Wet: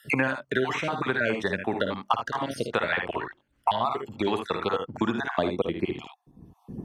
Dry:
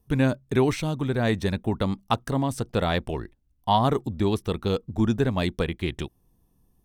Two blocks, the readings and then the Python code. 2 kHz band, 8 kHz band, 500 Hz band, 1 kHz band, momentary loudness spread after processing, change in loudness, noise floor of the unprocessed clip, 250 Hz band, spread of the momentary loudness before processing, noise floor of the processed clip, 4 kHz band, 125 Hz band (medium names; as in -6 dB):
+6.0 dB, -6.0 dB, -1.5 dB, 0.0 dB, 7 LU, -2.5 dB, -67 dBFS, -5.0 dB, 8 LU, -69 dBFS, -2.0 dB, -11.5 dB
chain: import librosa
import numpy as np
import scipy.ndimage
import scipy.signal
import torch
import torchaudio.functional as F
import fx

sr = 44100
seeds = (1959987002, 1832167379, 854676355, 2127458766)

y = fx.spec_dropout(x, sr, seeds[0], share_pct=41)
y = fx.filter_sweep_bandpass(y, sr, from_hz=1500.0, to_hz=200.0, start_s=4.78, end_s=6.35, q=0.91)
y = fx.room_early_taps(y, sr, ms=(54, 76), db=(-8.0, -9.0))
y = fx.band_squash(y, sr, depth_pct=100)
y = F.gain(torch.from_numpy(y), 6.5).numpy()